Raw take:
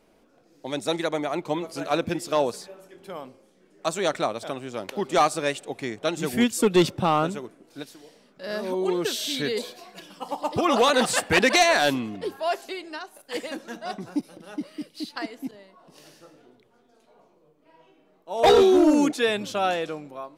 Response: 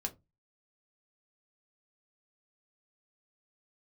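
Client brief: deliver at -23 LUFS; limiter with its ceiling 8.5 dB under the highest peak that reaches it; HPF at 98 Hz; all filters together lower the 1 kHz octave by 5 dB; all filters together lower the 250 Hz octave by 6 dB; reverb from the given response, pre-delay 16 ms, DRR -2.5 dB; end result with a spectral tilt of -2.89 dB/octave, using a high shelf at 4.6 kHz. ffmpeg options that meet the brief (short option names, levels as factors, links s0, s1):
-filter_complex "[0:a]highpass=98,equalizer=f=250:t=o:g=-8,equalizer=f=1000:t=o:g=-7,highshelf=f=4600:g=5.5,alimiter=limit=0.158:level=0:latency=1,asplit=2[s0][s1];[1:a]atrim=start_sample=2205,adelay=16[s2];[s1][s2]afir=irnorm=-1:irlink=0,volume=1.33[s3];[s0][s3]amix=inputs=2:normalize=0,volume=1.19"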